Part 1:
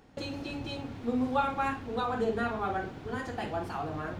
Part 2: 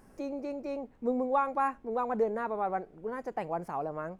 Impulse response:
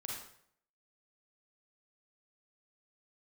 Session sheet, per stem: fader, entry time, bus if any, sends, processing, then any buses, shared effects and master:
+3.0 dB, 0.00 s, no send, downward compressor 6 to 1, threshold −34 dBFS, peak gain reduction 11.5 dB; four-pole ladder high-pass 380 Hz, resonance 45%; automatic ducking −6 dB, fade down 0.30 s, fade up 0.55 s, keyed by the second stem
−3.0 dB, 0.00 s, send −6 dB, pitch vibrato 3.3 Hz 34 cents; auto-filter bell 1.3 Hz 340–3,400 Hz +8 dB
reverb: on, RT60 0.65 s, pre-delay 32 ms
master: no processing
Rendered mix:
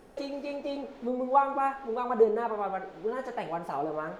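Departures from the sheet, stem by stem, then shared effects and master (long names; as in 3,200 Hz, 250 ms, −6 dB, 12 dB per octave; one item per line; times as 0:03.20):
stem 1 +3.0 dB → +10.5 dB
stem 2: missing pitch vibrato 3.3 Hz 34 cents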